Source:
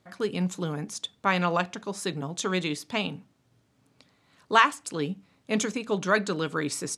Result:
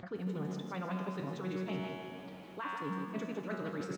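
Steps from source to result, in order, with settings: air absorption 120 m; resonator 93 Hz, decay 2 s, mix 80%; reverse; compressor 10:1, threshold -50 dBFS, peak gain reduction 22.5 dB; reverse; frequency-shifting echo 0.291 s, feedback 50%, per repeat +43 Hz, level -11.5 dB; time stretch by phase-locked vocoder 0.57×; high shelf 2900 Hz -11 dB; on a send at -13 dB: reverb RT60 2.4 s, pre-delay 58 ms; on the sum: upward compressor, threshold -55 dBFS; lo-fi delay 0.154 s, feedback 35%, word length 13-bit, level -7 dB; gain +15 dB

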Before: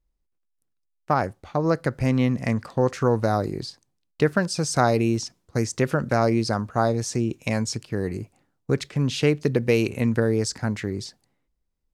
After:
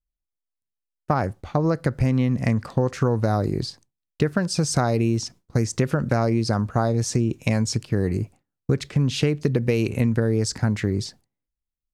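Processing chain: gate with hold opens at -44 dBFS; low shelf 210 Hz +7.5 dB; compressor, threshold -20 dBFS, peak gain reduction 9 dB; gain +3 dB

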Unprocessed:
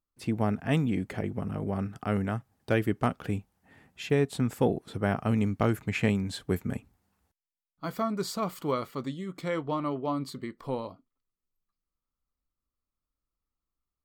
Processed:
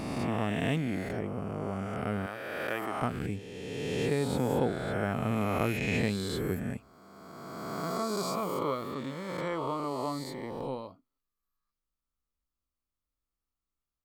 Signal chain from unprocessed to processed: spectral swells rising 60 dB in 2.26 s; 2.26–3.02 HPF 730 Hz 6 dB/oct; gain -6 dB

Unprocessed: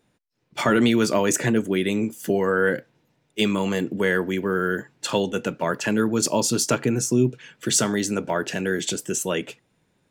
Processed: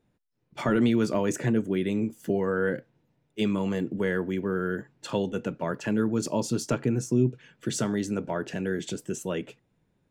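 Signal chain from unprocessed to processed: tilt -2 dB/oct; gain -7.5 dB

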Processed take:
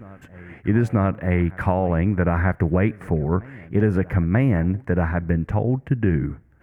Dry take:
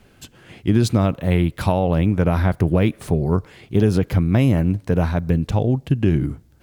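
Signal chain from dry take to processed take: resonant high shelf 2700 Hz -13.5 dB, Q 3; reverse echo 0.938 s -22.5 dB; gain -2.5 dB

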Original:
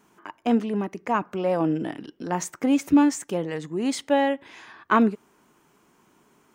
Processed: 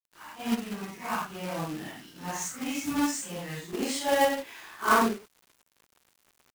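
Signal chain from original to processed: phase scrambler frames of 0.2 s; bell 410 Hz -14 dB 2.2 oct, from 3.73 s 120 Hz; companded quantiser 4-bit

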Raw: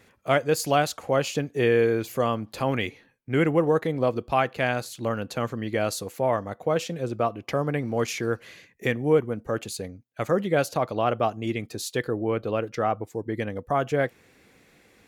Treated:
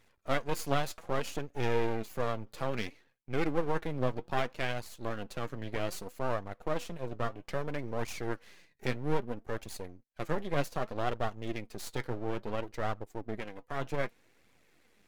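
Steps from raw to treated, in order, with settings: 13.38–13.79 HPF 290 Hz -> 940 Hz 6 dB/oct; half-wave rectifier; flange 0.62 Hz, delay 0.8 ms, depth 7.2 ms, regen +55%; gain -2 dB

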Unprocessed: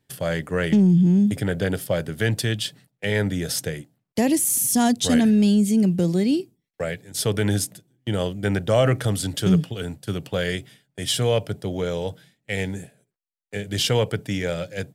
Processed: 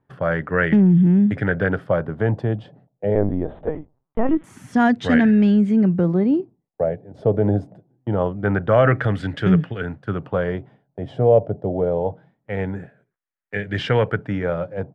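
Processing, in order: 3.15–4.44 LPC vocoder at 8 kHz pitch kept; LFO low-pass sine 0.24 Hz 660–1800 Hz; gain +2 dB

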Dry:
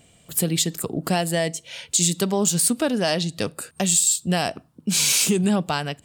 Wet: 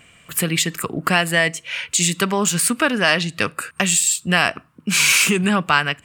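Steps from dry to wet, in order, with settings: band shelf 1700 Hz +12.5 dB; gain +1 dB

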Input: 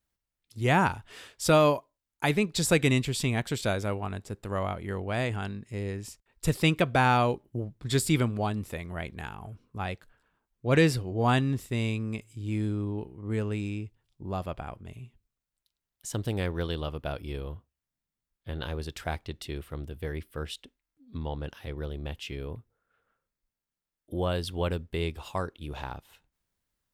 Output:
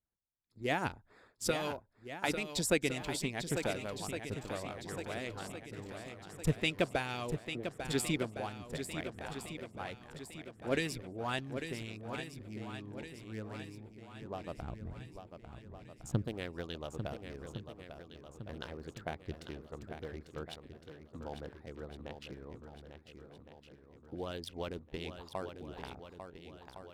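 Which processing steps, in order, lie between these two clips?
Wiener smoothing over 15 samples; dynamic EQ 1100 Hz, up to -6 dB, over -41 dBFS, Q 1.4; harmonic-percussive split harmonic -14 dB; 14.62–16.23 tone controls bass +13 dB, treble -2 dB; swung echo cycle 1.411 s, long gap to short 1.5:1, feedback 45%, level -8.5 dB; gain -4 dB

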